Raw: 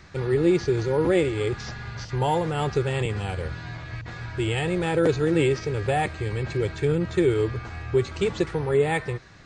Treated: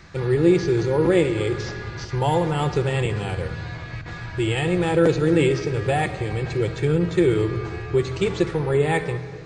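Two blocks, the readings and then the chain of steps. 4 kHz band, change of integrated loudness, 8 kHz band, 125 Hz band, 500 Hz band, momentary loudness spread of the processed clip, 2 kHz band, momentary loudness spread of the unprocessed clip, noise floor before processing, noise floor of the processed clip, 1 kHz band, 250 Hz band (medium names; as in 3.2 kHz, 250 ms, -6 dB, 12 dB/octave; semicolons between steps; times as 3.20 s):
+2.5 dB, +3.0 dB, +2.5 dB, +3.5 dB, +2.5 dB, 11 LU, +2.5 dB, 12 LU, -39 dBFS, -35 dBFS, +2.0 dB, +4.0 dB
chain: simulated room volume 3000 m³, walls mixed, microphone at 0.76 m; trim +2 dB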